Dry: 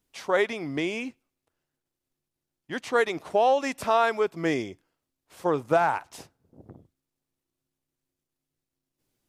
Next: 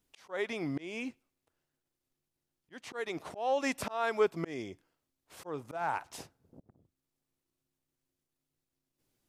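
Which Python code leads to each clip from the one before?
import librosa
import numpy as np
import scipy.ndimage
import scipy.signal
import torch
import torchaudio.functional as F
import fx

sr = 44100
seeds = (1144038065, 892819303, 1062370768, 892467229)

y = fx.auto_swell(x, sr, attack_ms=360.0)
y = y * librosa.db_to_amplitude(-1.5)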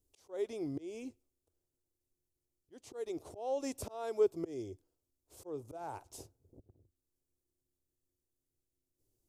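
y = fx.curve_eq(x, sr, hz=(100.0, 180.0, 370.0, 1800.0, 7100.0), db=(0, -16, -3, -25, -6))
y = y * librosa.db_to_amplitude(4.0)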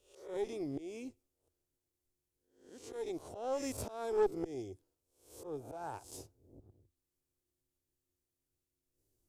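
y = fx.spec_swells(x, sr, rise_s=0.52)
y = fx.tube_stage(y, sr, drive_db=25.0, bias=0.65)
y = y * librosa.db_to_amplitude(2.0)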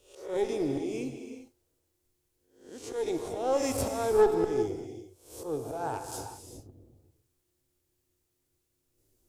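y = fx.rev_gated(x, sr, seeds[0], gate_ms=430, shape='flat', drr_db=5.0)
y = y * librosa.db_to_amplitude(8.5)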